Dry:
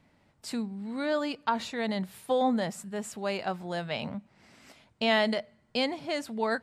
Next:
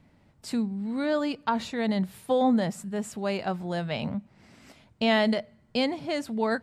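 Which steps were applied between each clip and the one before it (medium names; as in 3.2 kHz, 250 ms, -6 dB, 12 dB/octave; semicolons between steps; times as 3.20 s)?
bass shelf 330 Hz +8 dB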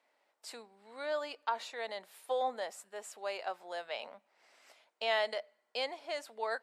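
high-pass 500 Hz 24 dB/octave; trim -6.5 dB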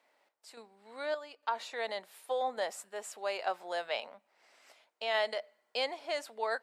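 random-step tremolo 3.5 Hz, depth 75%; trim +5 dB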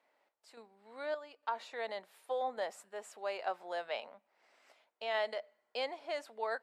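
treble shelf 3.5 kHz -8 dB; trim -2.5 dB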